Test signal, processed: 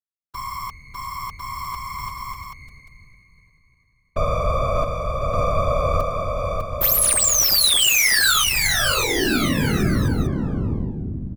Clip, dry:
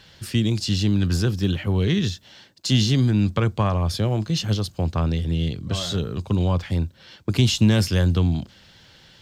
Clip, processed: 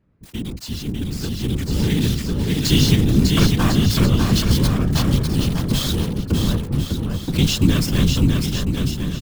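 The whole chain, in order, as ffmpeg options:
ffmpeg -i in.wav -filter_complex "[0:a]highpass=44,acrossover=split=480|1000[link_01][link_02][link_03];[link_02]aeval=exprs='abs(val(0))':channel_layout=same[link_04];[link_03]acrusher=bits=4:mix=0:aa=0.000001[link_05];[link_01][link_04][link_05]amix=inputs=3:normalize=0,afftfilt=real='hypot(re,im)*cos(2*PI*random(0))':imag='hypot(re,im)*sin(2*PI*random(1))':win_size=512:overlap=0.75,aecho=1:1:600|1050|1388|1641|1830:0.631|0.398|0.251|0.158|0.1,dynaudnorm=framelen=290:gausssize=13:maxgain=16dB,volume=-1dB" out.wav

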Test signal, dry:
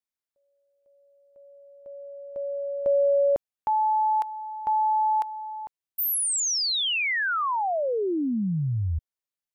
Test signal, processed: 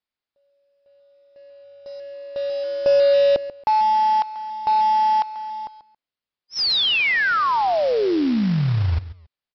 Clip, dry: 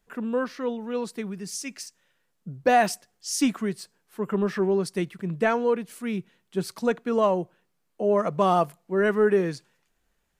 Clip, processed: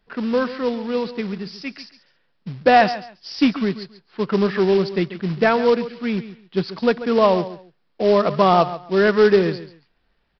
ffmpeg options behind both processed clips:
ffmpeg -i in.wav -af "aecho=1:1:138|276:0.2|0.0419,aresample=11025,acrusher=bits=4:mode=log:mix=0:aa=0.000001,aresample=44100,volume=6dB" out.wav

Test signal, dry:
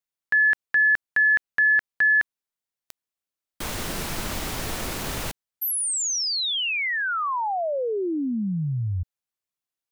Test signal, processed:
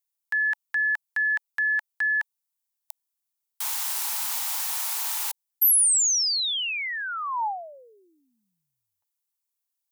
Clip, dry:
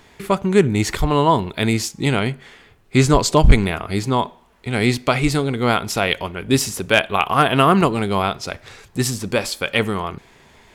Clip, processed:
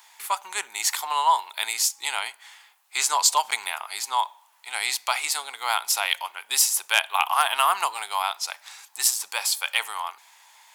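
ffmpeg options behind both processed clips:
ffmpeg -i in.wav -af "highpass=frequency=870:width_type=q:width=4.9,aderivative,volume=4.5dB" out.wav

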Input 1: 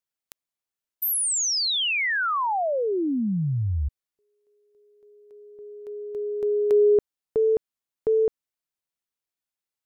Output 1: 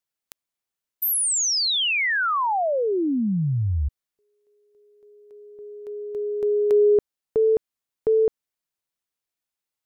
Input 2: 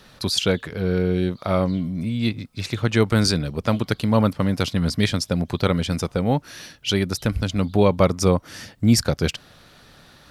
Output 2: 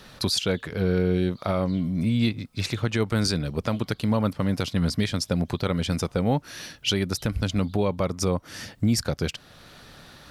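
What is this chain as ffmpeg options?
ffmpeg -i in.wav -af "alimiter=limit=-15dB:level=0:latency=1:release=446,volume=2dB" out.wav

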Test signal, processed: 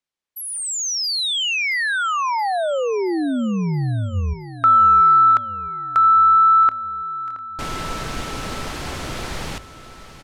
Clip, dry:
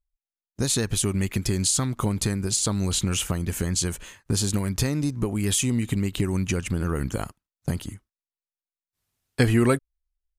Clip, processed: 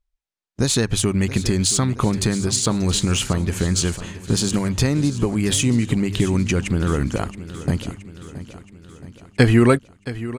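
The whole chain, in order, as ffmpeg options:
ffmpeg -i in.wav -filter_complex "[0:a]bandreject=frequency=50:width_type=h:width=6,bandreject=frequency=100:width_type=h:width=6,adynamicsmooth=sensitivity=1:basefreq=7900,asplit=2[link_01][link_02];[link_02]aecho=0:1:673|1346|2019|2692|3365|4038:0.188|0.105|0.0591|0.0331|0.0185|0.0104[link_03];[link_01][link_03]amix=inputs=2:normalize=0,volume=6dB" out.wav

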